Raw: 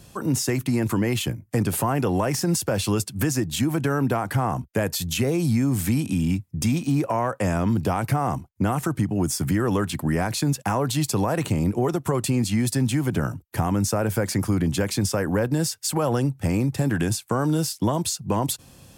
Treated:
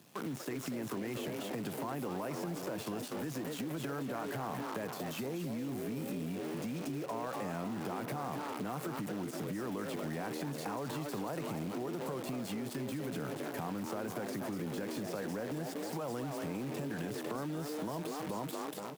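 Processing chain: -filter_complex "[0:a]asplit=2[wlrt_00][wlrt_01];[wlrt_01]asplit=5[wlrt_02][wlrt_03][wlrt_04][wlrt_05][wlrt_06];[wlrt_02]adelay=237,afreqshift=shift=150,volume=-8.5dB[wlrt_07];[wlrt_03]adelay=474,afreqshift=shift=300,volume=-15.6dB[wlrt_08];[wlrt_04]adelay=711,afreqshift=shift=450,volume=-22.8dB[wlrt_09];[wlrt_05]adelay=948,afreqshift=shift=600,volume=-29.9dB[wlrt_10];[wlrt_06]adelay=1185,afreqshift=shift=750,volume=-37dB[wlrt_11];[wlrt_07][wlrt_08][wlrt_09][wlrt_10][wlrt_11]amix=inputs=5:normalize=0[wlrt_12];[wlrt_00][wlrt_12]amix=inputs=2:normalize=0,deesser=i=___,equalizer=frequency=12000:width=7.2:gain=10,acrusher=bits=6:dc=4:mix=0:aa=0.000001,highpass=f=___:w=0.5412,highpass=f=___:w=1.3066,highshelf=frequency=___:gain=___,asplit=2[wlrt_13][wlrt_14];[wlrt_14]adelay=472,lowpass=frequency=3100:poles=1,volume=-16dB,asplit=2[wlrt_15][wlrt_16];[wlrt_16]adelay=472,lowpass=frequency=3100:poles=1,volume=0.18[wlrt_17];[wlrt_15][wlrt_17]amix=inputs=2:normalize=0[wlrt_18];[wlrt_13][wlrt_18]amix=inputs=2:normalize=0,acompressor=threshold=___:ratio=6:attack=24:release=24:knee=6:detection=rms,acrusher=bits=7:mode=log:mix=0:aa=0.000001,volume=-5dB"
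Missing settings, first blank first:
0.6, 150, 150, 3800, -6.5, -35dB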